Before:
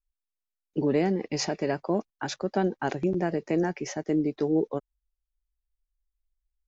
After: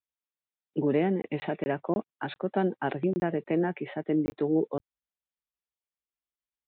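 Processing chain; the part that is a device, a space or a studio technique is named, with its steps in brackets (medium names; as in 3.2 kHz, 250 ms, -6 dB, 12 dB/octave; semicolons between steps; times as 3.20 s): call with lost packets (high-pass 100 Hz 24 dB/octave; resampled via 8 kHz; lost packets of 20 ms); trim -1 dB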